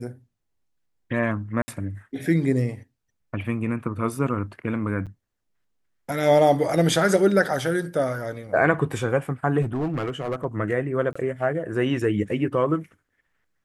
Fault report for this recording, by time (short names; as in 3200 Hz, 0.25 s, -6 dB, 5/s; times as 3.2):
1.62–1.68 gap 60 ms
5.06–5.07 gap 7.2 ms
9.61–10.45 clipped -21.5 dBFS
11.13–11.15 gap 25 ms